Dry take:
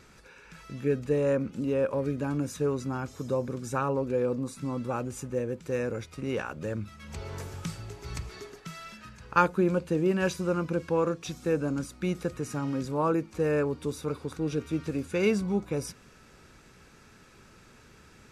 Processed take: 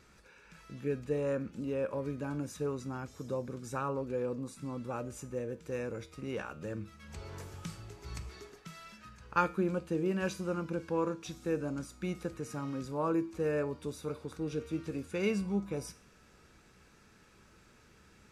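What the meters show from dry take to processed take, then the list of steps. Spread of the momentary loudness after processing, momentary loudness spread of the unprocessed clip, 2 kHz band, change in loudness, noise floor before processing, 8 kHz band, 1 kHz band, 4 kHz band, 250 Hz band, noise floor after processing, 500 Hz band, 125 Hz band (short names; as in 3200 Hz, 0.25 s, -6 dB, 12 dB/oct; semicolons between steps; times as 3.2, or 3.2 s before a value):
13 LU, 13 LU, -6.5 dB, -6.5 dB, -56 dBFS, -6.0 dB, -6.0 dB, -6.0 dB, -6.0 dB, -62 dBFS, -6.5 dB, -7.0 dB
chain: resonator 66 Hz, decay 0.41 s, harmonics odd, mix 60%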